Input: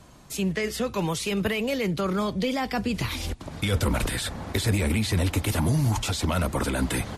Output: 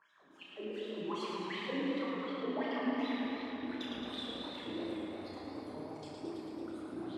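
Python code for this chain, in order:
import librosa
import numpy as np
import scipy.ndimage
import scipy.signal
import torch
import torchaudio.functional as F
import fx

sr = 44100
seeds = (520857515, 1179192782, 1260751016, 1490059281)

p1 = fx.spec_dropout(x, sr, seeds[0], share_pct=27)
p2 = fx.dmg_buzz(p1, sr, base_hz=50.0, harmonics=37, level_db=-55.0, tilt_db=-1, odd_only=False)
p3 = fx.spec_box(p2, sr, start_s=4.7, length_s=2.13, low_hz=790.0, high_hz=4200.0, gain_db=-18)
p4 = np.clip(p3, -10.0 ** (-25.5 / 20.0), 10.0 ** (-25.5 / 20.0))
p5 = fx.wah_lfo(p4, sr, hz=2.7, low_hz=250.0, high_hz=3900.0, q=11.0)
p6 = p5 + fx.room_flutter(p5, sr, wall_m=5.6, rt60_s=0.4, dry=0)
p7 = fx.room_shoebox(p6, sr, seeds[1], volume_m3=210.0, walls='hard', distance_m=0.6)
p8 = fx.echo_warbled(p7, sr, ms=110, feedback_pct=77, rate_hz=2.8, cents=95, wet_db=-4.5)
y = p8 * librosa.db_to_amplitude(-3.0)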